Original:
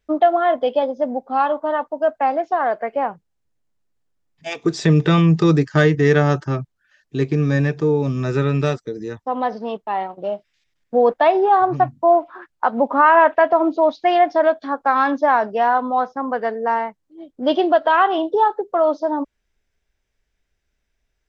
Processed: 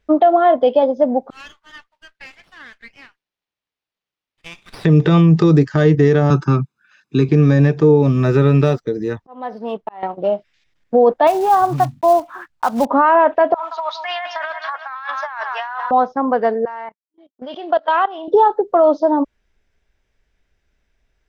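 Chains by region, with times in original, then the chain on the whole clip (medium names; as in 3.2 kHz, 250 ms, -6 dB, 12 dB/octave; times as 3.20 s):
1.30–4.85 s: inverse Chebyshev high-pass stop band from 410 Hz, stop band 80 dB + compression 10:1, threshold -35 dBFS + sliding maximum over 5 samples
6.30–7.29 s: high-pass 130 Hz 24 dB/octave + comb 0.8 ms, depth 72%
8.01–10.03 s: median filter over 5 samples + slow attack 796 ms
11.27–12.87 s: block-companded coder 5-bit + peaking EQ 430 Hz -9 dB 1.3 oct
13.54–15.91 s: high-pass 1.1 kHz 24 dB/octave + feedback delay 172 ms, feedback 53%, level -15.5 dB + compressor with a negative ratio -31 dBFS
16.65–18.28 s: expander -35 dBFS + high-pass 840 Hz 6 dB/octave + level held to a coarse grid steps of 18 dB
whole clip: dynamic bell 1.9 kHz, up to -7 dB, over -31 dBFS, Q 0.85; peak limiter -11 dBFS; treble shelf 6.3 kHz -11.5 dB; trim +7 dB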